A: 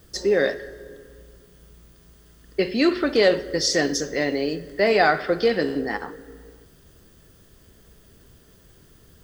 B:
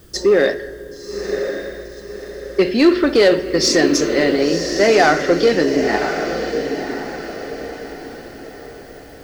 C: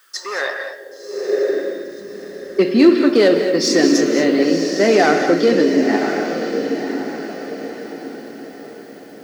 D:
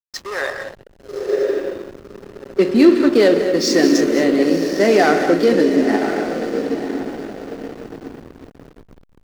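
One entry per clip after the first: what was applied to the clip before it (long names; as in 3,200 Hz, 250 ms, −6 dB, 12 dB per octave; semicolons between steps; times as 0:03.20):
parametric band 350 Hz +4.5 dB 0.48 octaves; in parallel at −10.5 dB: wave folding −17 dBFS; on the sum: feedback delay with all-pass diffusion 1,052 ms, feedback 42%, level −7 dB; level +3.5 dB
high-pass filter 56 Hz; high-pass filter sweep 1,400 Hz → 220 Hz, 0:00.03–0:02.01; reverb whose tail is shaped and stops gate 250 ms rising, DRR 6.5 dB; level −3 dB
slack as between gear wheels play −24.5 dBFS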